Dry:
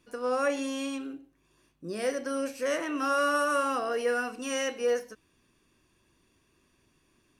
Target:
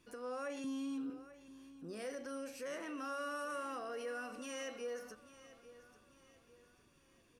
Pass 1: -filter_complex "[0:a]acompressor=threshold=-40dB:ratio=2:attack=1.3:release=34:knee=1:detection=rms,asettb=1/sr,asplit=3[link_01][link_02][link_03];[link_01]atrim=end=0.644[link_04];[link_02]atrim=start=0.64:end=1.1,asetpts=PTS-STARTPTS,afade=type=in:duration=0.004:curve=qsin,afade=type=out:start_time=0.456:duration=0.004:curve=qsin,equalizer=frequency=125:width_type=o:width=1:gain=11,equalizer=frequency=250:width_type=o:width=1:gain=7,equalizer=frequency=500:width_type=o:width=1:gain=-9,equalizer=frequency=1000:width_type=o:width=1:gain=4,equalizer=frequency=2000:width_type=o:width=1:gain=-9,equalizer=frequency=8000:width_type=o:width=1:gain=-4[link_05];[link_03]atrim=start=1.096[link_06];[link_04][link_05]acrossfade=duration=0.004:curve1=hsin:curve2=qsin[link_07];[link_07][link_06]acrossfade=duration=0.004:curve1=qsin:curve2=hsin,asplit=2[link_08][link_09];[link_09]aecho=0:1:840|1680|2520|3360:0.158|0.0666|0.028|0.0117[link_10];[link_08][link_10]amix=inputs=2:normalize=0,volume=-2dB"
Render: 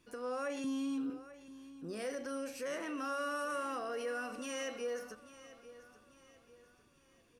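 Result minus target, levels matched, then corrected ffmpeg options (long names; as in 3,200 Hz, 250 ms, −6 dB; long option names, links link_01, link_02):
downward compressor: peak gain reduction −4 dB
-filter_complex "[0:a]acompressor=threshold=-48dB:ratio=2:attack=1.3:release=34:knee=1:detection=rms,asettb=1/sr,asplit=3[link_01][link_02][link_03];[link_01]atrim=end=0.644[link_04];[link_02]atrim=start=0.64:end=1.1,asetpts=PTS-STARTPTS,afade=type=in:duration=0.004:curve=qsin,afade=type=out:start_time=0.456:duration=0.004:curve=qsin,equalizer=frequency=125:width_type=o:width=1:gain=11,equalizer=frequency=250:width_type=o:width=1:gain=7,equalizer=frequency=500:width_type=o:width=1:gain=-9,equalizer=frequency=1000:width_type=o:width=1:gain=4,equalizer=frequency=2000:width_type=o:width=1:gain=-9,equalizer=frequency=8000:width_type=o:width=1:gain=-4[link_05];[link_03]atrim=start=1.096[link_06];[link_04][link_05]acrossfade=duration=0.004:curve1=hsin:curve2=qsin[link_07];[link_07][link_06]acrossfade=duration=0.004:curve1=qsin:curve2=hsin,asplit=2[link_08][link_09];[link_09]aecho=0:1:840|1680|2520|3360:0.158|0.0666|0.028|0.0117[link_10];[link_08][link_10]amix=inputs=2:normalize=0,volume=-2dB"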